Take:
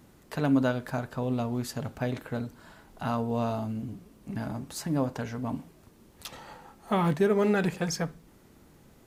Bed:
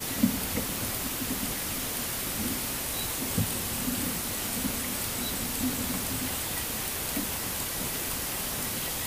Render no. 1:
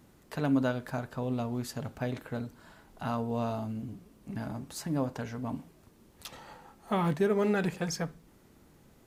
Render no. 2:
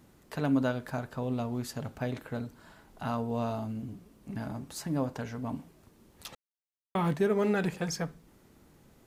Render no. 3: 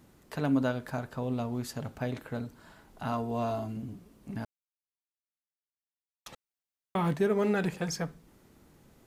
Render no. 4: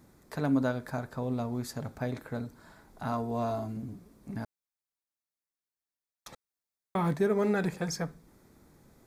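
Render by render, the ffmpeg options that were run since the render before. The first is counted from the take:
ffmpeg -i in.wav -af "volume=-3dB" out.wav
ffmpeg -i in.wav -filter_complex "[0:a]asplit=3[link_01][link_02][link_03];[link_01]atrim=end=6.35,asetpts=PTS-STARTPTS,afade=type=out:start_time=6.346:duration=0.004:curve=hsin[link_04];[link_02]atrim=start=6.35:end=6.95,asetpts=PTS-STARTPTS,volume=0[link_05];[link_03]atrim=start=6.95,asetpts=PTS-STARTPTS,afade=type=in:duration=0.004:curve=hsin[link_06];[link_04][link_05][link_06]concat=n=3:v=0:a=1" out.wav
ffmpeg -i in.wav -filter_complex "[0:a]asettb=1/sr,asplit=3[link_01][link_02][link_03];[link_01]atrim=end=3.124[link_04];[link_02]atrim=start=3.12:end=3.77,asetpts=PTS-STARTPTS,afade=type=in:duration=0.004:curve=qsin,afade=type=out:start_time=0.646:duration=0.004:curve=qsin,aecho=1:1:2.9:0.63,atrim=end_sample=28665[link_05];[link_03]atrim=start=3.766[link_06];[link_04][link_05]acrossfade=duration=0.004:curve1=hsin:curve2=qsin[link_07];[link_07][link_06]acrossfade=duration=0.004:curve1=qsin:curve2=hsin,asplit=3[link_08][link_09][link_10];[link_08]atrim=end=4.45,asetpts=PTS-STARTPTS,afade=type=out:start_time=4.446:duration=0.004:curve=hsin[link_11];[link_09]atrim=start=4.45:end=6.26,asetpts=PTS-STARTPTS,volume=0[link_12];[link_10]atrim=start=6.26,asetpts=PTS-STARTPTS,afade=type=in:duration=0.004:curve=hsin[link_13];[link_11][link_12][link_13]concat=n=3:v=0:a=1" out.wav
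ffmpeg -i in.wav -af "equalizer=frequency=2900:width_type=o:width=0.26:gain=-12" out.wav

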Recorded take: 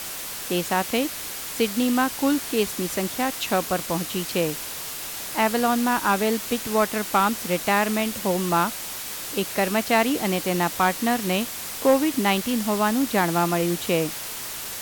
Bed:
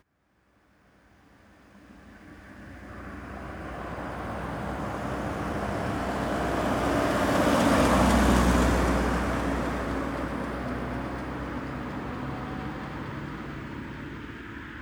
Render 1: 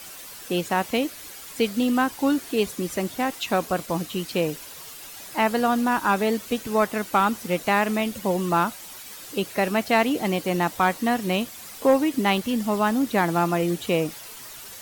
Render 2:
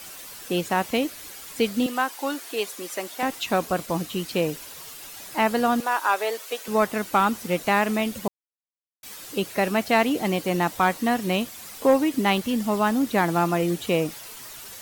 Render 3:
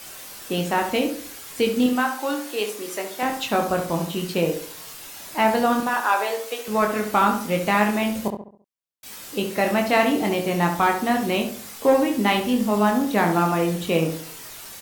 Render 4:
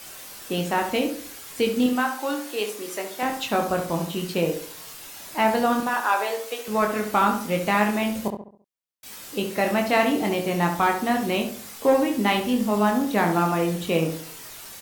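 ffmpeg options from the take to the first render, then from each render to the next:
ffmpeg -i in.wav -af "afftdn=noise_reduction=10:noise_floor=-34" out.wav
ffmpeg -i in.wav -filter_complex "[0:a]asettb=1/sr,asplit=3[link_01][link_02][link_03];[link_01]atrim=end=1.864[link_04];[link_02]atrim=start=1.86:end=3.23,asetpts=PTS-STARTPTS,afade=type=in:duration=0.004:curve=qsin,afade=type=out:start_time=1.366:duration=0.004:curve=qsin,highpass=500[link_05];[link_03]atrim=start=3.226[link_06];[link_04][link_05]acrossfade=duration=0.004:curve1=hsin:curve2=qsin[link_07];[link_07][link_06]acrossfade=duration=0.004:curve1=qsin:curve2=hsin,asettb=1/sr,asplit=3[link_08][link_09][link_10];[link_08]atrim=end=5.804[link_11];[link_09]atrim=start=5.8:end=6.68,asetpts=PTS-STARTPTS,afade=type=in:duration=0.004:curve=qsin,afade=type=out:start_time=0.876:duration=0.004:curve=qsin,highpass=frequency=450:width=0.5412,highpass=frequency=450:width=1.3066[link_12];[link_10]atrim=start=6.676[link_13];[link_11][link_12]acrossfade=duration=0.004:curve1=hsin:curve2=qsin[link_14];[link_14][link_13]acrossfade=duration=0.004:curve1=qsin:curve2=hsin,asplit=3[link_15][link_16][link_17];[link_15]atrim=end=8.28,asetpts=PTS-STARTPTS,afade=type=out:start_time=8.276:duration=0.004:curve=hsin[link_18];[link_16]atrim=start=8.28:end=9.03,asetpts=PTS-STARTPTS,volume=0[link_19];[link_17]atrim=start=9.03,asetpts=PTS-STARTPTS,afade=type=in:duration=0.004:curve=hsin[link_20];[link_18][link_19][link_20]concat=n=3:v=0:a=1" out.wav
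ffmpeg -i in.wav -filter_complex "[0:a]asplit=2[link_01][link_02];[link_02]adelay=24,volume=-5dB[link_03];[link_01][link_03]amix=inputs=2:normalize=0,asplit=2[link_04][link_05];[link_05]adelay=68,lowpass=frequency=1600:poles=1,volume=-5.5dB,asplit=2[link_06][link_07];[link_07]adelay=68,lowpass=frequency=1600:poles=1,volume=0.44,asplit=2[link_08][link_09];[link_09]adelay=68,lowpass=frequency=1600:poles=1,volume=0.44,asplit=2[link_10][link_11];[link_11]adelay=68,lowpass=frequency=1600:poles=1,volume=0.44,asplit=2[link_12][link_13];[link_13]adelay=68,lowpass=frequency=1600:poles=1,volume=0.44[link_14];[link_06][link_08][link_10][link_12][link_14]amix=inputs=5:normalize=0[link_15];[link_04][link_15]amix=inputs=2:normalize=0" out.wav
ffmpeg -i in.wav -af "volume=-1.5dB" out.wav

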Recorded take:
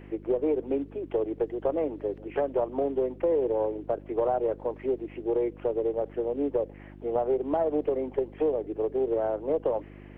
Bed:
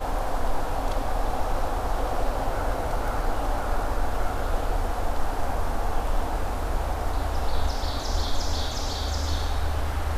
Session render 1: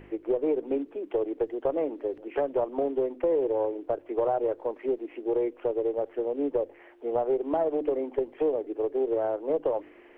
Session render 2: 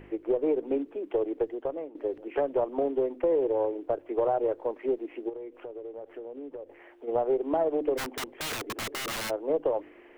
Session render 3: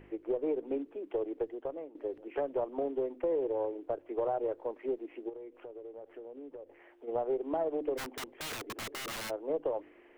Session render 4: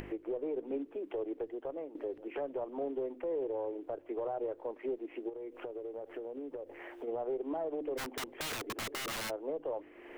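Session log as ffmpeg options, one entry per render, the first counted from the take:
ffmpeg -i in.wav -af "bandreject=frequency=50:width_type=h:width=4,bandreject=frequency=100:width_type=h:width=4,bandreject=frequency=150:width_type=h:width=4,bandreject=frequency=200:width_type=h:width=4,bandreject=frequency=250:width_type=h:width=4,bandreject=frequency=300:width_type=h:width=4" out.wav
ffmpeg -i in.wav -filter_complex "[0:a]asplit=3[link_01][link_02][link_03];[link_01]afade=type=out:start_time=5.28:duration=0.02[link_04];[link_02]acompressor=threshold=-38dB:ratio=5:attack=3.2:release=140:knee=1:detection=peak,afade=type=in:start_time=5.28:duration=0.02,afade=type=out:start_time=7.07:duration=0.02[link_05];[link_03]afade=type=in:start_time=7.07:duration=0.02[link_06];[link_04][link_05][link_06]amix=inputs=3:normalize=0,asplit=3[link_07][link_08][link_09];[link_07]afade=type=out:start_time=7.97:duration=0.02[link_10];[link_08]aeval=exprs='(mod(26.6*val(0)+1,2)-1)/26.6':channel_layout=same,afade=type=in:start_time=7.97:duration=0.02,afade=type=out:start_time=9.29:duration=0.02[link_11];[link_09]afade=type=in:start_time=9.29:duration=0.02[link_12];[link_10][link_11][link_12]amix=inputs=3:normalize=0,asplit=2[link_13][link_14];[link_13]atrim=end=1.95,asetpts=PTS-STARTPTS,afade=type=out:start_time=1.4:duration=0.55:silence=0.149624[link_15];[link_14]atrim=start=1.95,asetpts=PTS-STARTPTS,afade=type=in:duration=0.004:curve=hsin:silence=0.149624[link_16];[link_15][link_16]concat=n=2:v=0:a=1" out.wav
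ffmpeg -i in.wav -af "volume=-6dB" out.wav
ffmpeg -i in.wav -af "acompressor=mode=upward:threshold=-35dB:ratio=2.5,alimiter=level_in=4.5dB:limit=-24dB:level=0:latency=1:release=56,volume=-4.5dB" out.wav

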